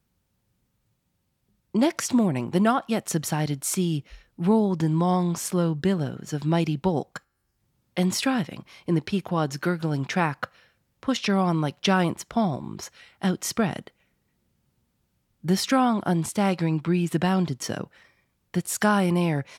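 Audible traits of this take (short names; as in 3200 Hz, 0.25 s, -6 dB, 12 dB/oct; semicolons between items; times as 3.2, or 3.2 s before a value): noise floor -74 dBFS; spectral tilt -5.5 dB/oct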